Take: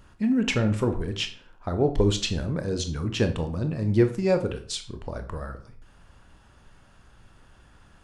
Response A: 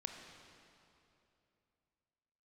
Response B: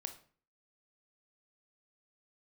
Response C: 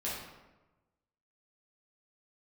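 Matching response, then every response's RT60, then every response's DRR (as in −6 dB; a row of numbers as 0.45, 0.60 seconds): B; 2.9, 0.45, 1.1 seconds; 3.5, 7.0, −8.0 decibels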